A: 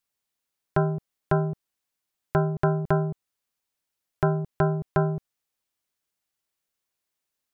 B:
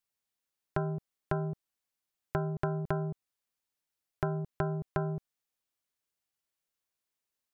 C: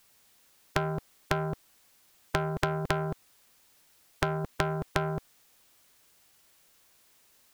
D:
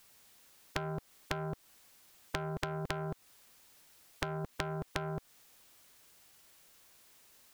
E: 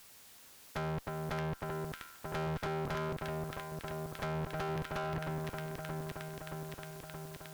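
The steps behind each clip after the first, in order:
compression, threshold -22 dBFS, peak gain reduction 5.5 dB; trim -5 dB
in parallel at -6 dB: saturation -28 dBFS, distortion -11 dB; on the sum: spectrum-flattening compressor 2:1; trim +6 dB
compression 3:1, threshold -37 dBFS, peak gain reduction 11 dB; trim +1 dB
echo whose repeats swap between lows and highs 312 ms, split 1.6 kHz, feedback 82%, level -5.5 dB; valve stage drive 41 dB, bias 0.55; trim +8 dB

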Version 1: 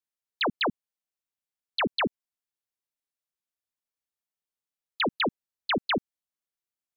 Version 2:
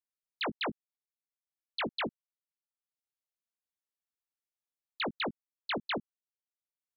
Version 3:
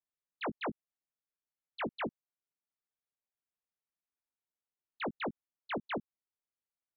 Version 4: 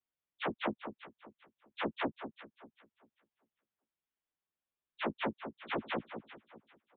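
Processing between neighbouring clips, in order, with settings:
transient shaper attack +1 dB, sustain -11 dB; doubling 18 ms -7.5 dB; trim -8.5 dB
Gaussian low-pass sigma 3.3 samples; trim -1 dB
frequency axis rescaled in octaves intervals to 111%; echo whose repeats swap between lows and highs 197 ms, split 1.3 kHz, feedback 51%, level -8 dB; resampled via 8 kHz; trim +6 dB

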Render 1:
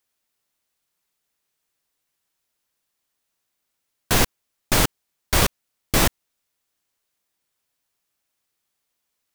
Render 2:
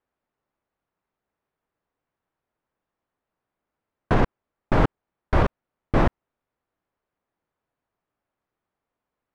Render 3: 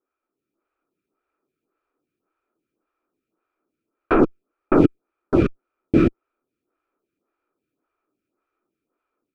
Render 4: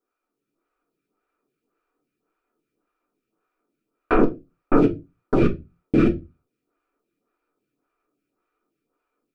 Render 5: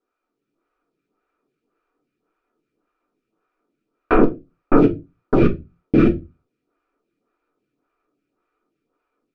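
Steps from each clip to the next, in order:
low-pass 1.2 kHz 12 dB/octave; peak limiter -12.5 dBFS, peak gain reduction 5.5 dB; trim +4 dB
level rider gain up to 6 dB; small resonant body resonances 330/1300/2400 Hz, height 16 dB, ringing for 20 ms; lamp-driven phase shifter 1.8 Hz; trim -6.5 dB
peak limiter -10 dBFS, peak gain reduction 8.5 dB; reverberation RT60 0.25 s, pre-delay 4 ms, DRR 2 dB
distance through air 93 m; trim +3.5 dB

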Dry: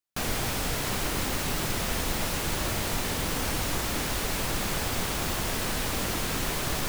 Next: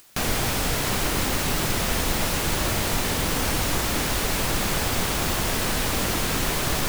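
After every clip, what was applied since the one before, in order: upward compressor, threshold -34 dBFS; trim +5 dB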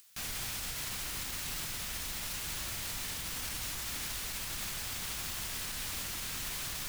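amplifier tone stack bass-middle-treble 5-5-5; peak limiter -27 dBFS, peak gain reduction 5.5 dB; trim -1.5 dB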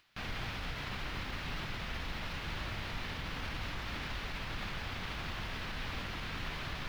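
distance through air 330 m; trim +5.5 dB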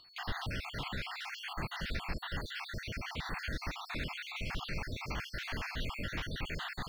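random holes in the spectrogram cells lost 62%; whistle 4.4 kHz -62 dBFS; trim +4.5 dB

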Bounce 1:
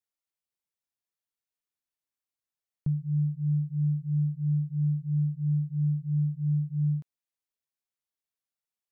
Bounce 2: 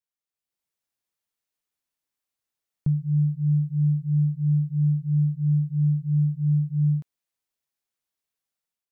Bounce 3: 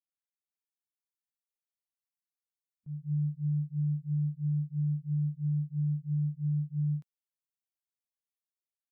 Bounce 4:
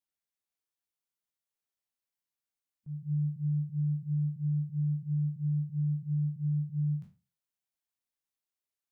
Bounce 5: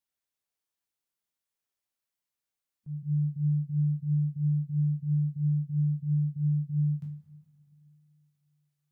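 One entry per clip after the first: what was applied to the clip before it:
level rider gain up to 9 dB; trim -4 dB
expander on every frequency bin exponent 1.5; slow attack 193 ms; peak limiter -19.5 dBFS, peak gain reduction 3 dB; trim -6 dB
spectral sustain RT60 0.33 s
reverberation RT60 2.5 s, pre-delay 43 ms, DRR 11 dB; trim +2 dB

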